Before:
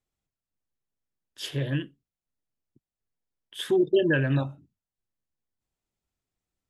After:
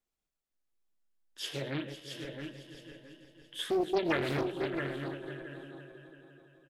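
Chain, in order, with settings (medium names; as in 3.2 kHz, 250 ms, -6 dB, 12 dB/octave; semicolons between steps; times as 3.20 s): backward echo that repeats 250 ms, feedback 62%, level -10 dB; peaking EQ 110 Hz -13 dB 0.89 oct; in parallel at -2.5 dB: compression, threshold -33 dBFS, peak gain reduction 14.5 dB; on the sum: flange 1.4 Hz, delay 8.5 ms, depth 1.2 ms, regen +71%; feedback delay 671 ms, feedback 24%, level -6.5 dB; on a send at -14.5 dB: reverberation RT60 0.35 s, pre-delay 50 ms; on the sum: loudspeaker Doppler distortion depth 0.59 ms; trim -2.5 dB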